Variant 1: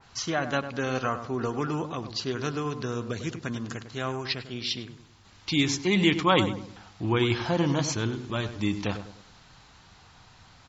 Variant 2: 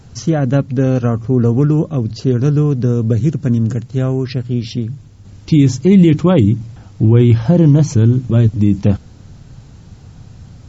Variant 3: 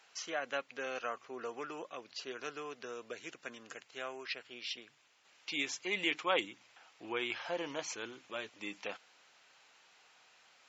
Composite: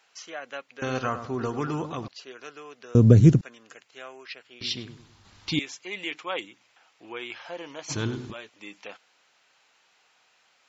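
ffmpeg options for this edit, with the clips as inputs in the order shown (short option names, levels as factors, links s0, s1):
-filter_complex "[0:a]asplit=3[s0][s1][s2];[2:a]asplit=5[s3][s4][s5][s6][s7];[s3]atrim=end=0.822[s8];[s0]atrim=start=0.818:end=2.082[s9];[s4]atrim=start=2.078:end=2.952[s10];[1:a]atrim=start=2.948:end=3.412[s11];[s5]atrim=start=3.408:end=4.612[s12];[s1]atrim=start=4.608:end=5.592[s13];[s6]atrim=start=5.588:end=7.92[s14];[s2]atrim=start=7.88:end=8.34[s15];[s7]atrim=start=8.3[s16];[s8][s9]acrossfade=d=0.004:c1=hsin:c2=hsin[s17];[s17][s10]acrossfade=d=0.004:c1=hsin:c2=hsin[s18];[s18][s11]acrossfade=d=0.004:c1=hsin:c2=hsin[s19];[s19][s12]acrossfade=d=0.004:c1=hsin:c2=hsin[s20];[s20][s13]acrossfade=d=0.004:c1=hsin:c2=hsin[s21];[s21][s14]acrossfade=d=0.004:c1=hsin:c2=hsin[s22];[s22][s15]acrossfade=d=0.04:c1=tri:c2=tri[s23];[s23][s16]acrossfade=d=0.04:c1=tri:c2=tri"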